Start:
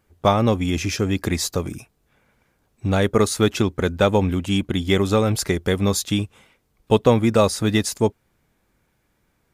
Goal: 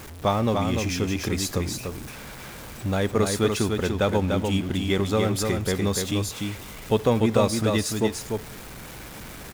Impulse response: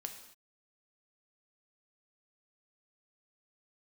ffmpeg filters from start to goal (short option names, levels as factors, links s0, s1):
-filter_complex "[0:a]aeval=exprs='val(0)+0.5*0.0355*sgn(val(0))':c=same,aecho=1:1:294:0.596,asplit=2[s0][s1];[1:a]atrim=start_sample=2205[s2];[s1][s2]afir=irnorm=-1:irlink=0,volume=0.376[s3];[s0][s3]amix=inputs=2:normalize=0,volume=0.398"